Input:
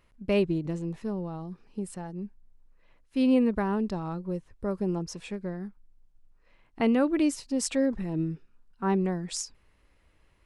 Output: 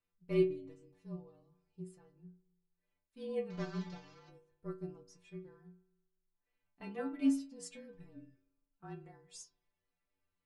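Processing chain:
0:03.50–0:04.29: linear delta modulator 32 kbit/s, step −28.5 dBFS
frequency shifter −31 Hz
stiff-string resonator 88 Hz, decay 0.56 s, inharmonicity 0.008
spring reverb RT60 1.2 s, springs 40 ms, chirp 75 ms, DRR 18 dB
expander for the loud parts 1.5 to 1, over −50 dBFS
level +2 dB

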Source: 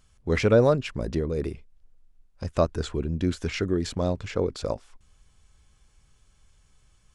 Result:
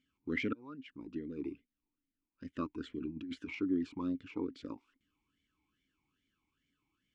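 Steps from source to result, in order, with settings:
0:00.53–0:01.52: fade in
0:02.99–0:03.55: compressor whose output falls as the input rises −29 dBFS, ratio −0.5
formant filter swept between two vowels i-u 2.4 Hz
level +1.5 dB

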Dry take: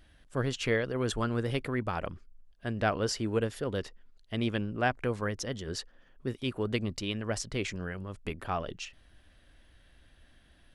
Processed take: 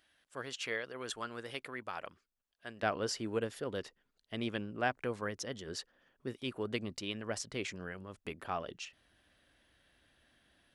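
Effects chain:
high-pass filter 1,000 Hz 6 dB per octave, from 0:02.83 220 Hz
level −4 dB

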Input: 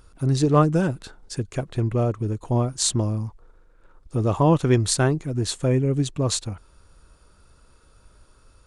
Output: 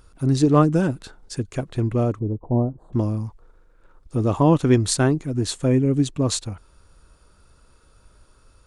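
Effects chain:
0:02.19–0:02.93: inverse Chebyshev low-pass filter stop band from 2,200 Hz, stop band 50 dB
dynamic equaliser 270 Hz, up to +6 dB, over −34 dBFS, Q 2.6

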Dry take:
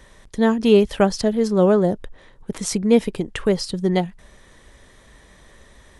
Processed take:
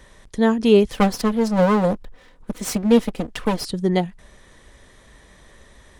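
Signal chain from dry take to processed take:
0:00.91–0:03.65: lower of the sound and its delayed copy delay 4 ms

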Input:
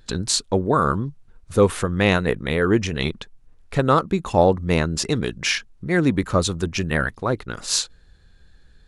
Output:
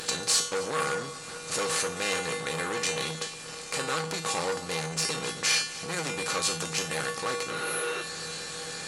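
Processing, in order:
compressor on every frequency bin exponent 0.4
mains-hum notches 50/100/150 Hz
healed spectral selection 0:07.53–0:07.99, 320–9,500 Hz before
in parallel at 0 dB: downward compressor, threshold −24 dBFS, peak gain reduction 16.5 dB
on the sum: spectral tilt +3 dB per octave
tuned comb filter 160 Hz, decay 0.43 s, harmonics odd, mix 90%
on a send: echo with a time of its own for lows and highs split 1,500 Hz, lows 122 ms, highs 266 ms, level −16 dB
on the sum: saturating transformer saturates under 3,500 Hz

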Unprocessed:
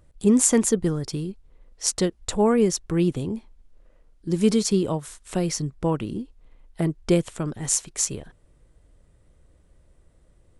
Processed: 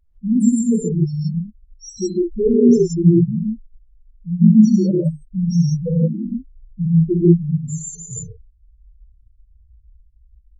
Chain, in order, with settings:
high-shelf EQ 2,600 Hz −3 dB
automatic gain control gain up to 7 dB
spectral peaks only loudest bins 1
reverb whose tail is shaped and stops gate 190 ms rising, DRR −3.5 dB
level +3.5 dB

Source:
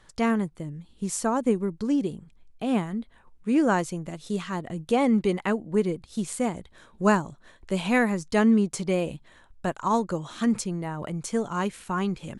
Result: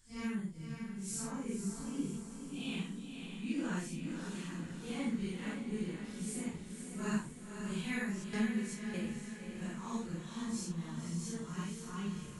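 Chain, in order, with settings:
random phases in long frames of 200 ms
0:02.14–0:03.53: gain on a spectral selection 2,300–4,700 Hz +9 dB
0:08.24–0:09.06: noise gate with hold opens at −18 dBFS
guitar amp tone stack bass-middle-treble 6-0-2
feedback delay with all-pass diffusion 536 ms, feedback 53%, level −6 dB
level +6 dB

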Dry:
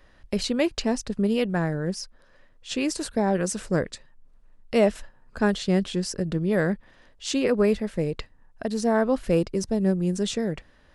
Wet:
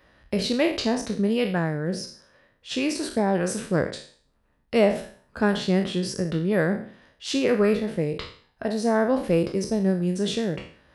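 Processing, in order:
peak hold with a decay on every bin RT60 0.47 s
high-pass filter 64 Hz 12 dB per octave
parametric band 7,200 Hz −7.5 dB 0.58 octaves

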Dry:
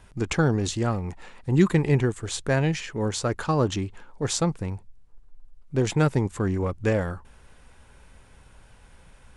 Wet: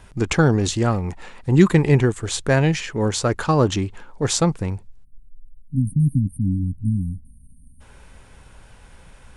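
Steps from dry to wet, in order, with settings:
0:05.04–0:07.81: time-frequency box erased 280–8,500 Hz
0:04.70–0:05.87: dynamic equaliser 900 Hz, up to −5 dB, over −54 dBFS, Q 1.5
level +5.5 dB

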